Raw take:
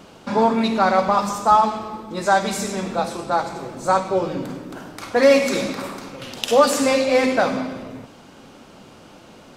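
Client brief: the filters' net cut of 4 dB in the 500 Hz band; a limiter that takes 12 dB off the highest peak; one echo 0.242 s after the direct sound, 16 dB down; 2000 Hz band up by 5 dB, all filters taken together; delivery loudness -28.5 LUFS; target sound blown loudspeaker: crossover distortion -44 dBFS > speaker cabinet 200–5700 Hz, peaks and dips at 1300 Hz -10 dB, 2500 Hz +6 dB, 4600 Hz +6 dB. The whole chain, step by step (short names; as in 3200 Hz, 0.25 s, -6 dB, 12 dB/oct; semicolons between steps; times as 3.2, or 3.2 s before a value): bell 500 Hz -4.5 dB; bell 2000 Hz +5.5 dB; limiter -13.5 dBFS; echo 0.242 s -16 dB; crossover distortion -44 dBFS; speaker cabinet 200–5700 Hz, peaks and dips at 1300 Hz -10 dB, 2500 Hz +6 dB, 4600 Hz +6 dB; gain -3 dB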